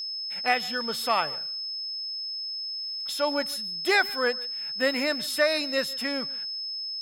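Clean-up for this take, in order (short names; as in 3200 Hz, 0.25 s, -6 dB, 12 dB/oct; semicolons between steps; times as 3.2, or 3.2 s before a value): notch 5200 Hz, Q 30; inverse comb 0.148 s -21.5 dB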